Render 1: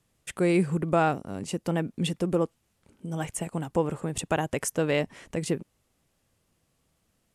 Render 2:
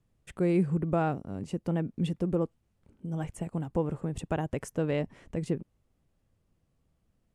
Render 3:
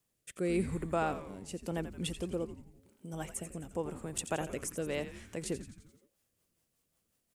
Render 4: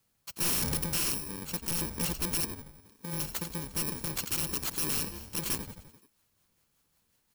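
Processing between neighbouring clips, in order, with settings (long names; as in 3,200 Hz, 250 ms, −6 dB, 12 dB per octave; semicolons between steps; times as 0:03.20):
spectral tilt −2.5 dB per octave; level −7 dB
RIAA equalisation recording; rotating-speaker cabinet horn 0.9 Hz, later 5.5 Hz, at 0:05.50; echo with shifted repeats 86 ms, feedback 57%, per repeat −120 Hz, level −11 dB
samples in bit-reversed order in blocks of 64 samples; wrap-around overflow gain 30.5 dB; level +6 dB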